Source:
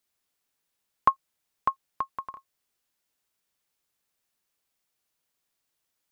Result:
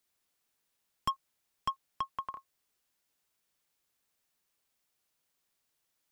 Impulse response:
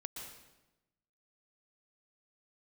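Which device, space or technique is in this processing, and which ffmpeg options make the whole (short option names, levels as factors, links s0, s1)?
one-band saturation: -filter_complex "[0:a]acrossover=split=300|3200[s0][s1][s2];[s1]asoftclip=type=tanh:threshold=0.0473[s3];[s0][s3][s2]amix=inputs=3:normalize=0"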